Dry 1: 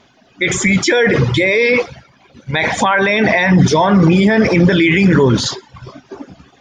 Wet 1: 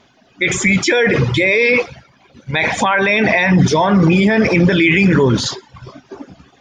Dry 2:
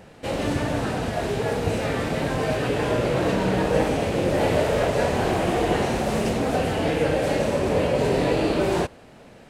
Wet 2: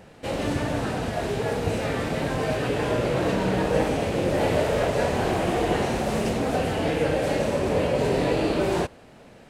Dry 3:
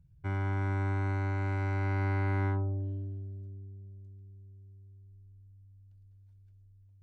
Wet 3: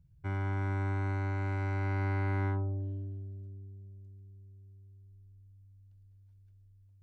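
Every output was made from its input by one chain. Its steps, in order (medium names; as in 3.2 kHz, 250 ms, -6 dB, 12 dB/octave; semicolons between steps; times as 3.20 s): dynamic bell 2.5 kHz, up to +6 dB, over -33 dBFS, Q 5.3; trim -1.5 dB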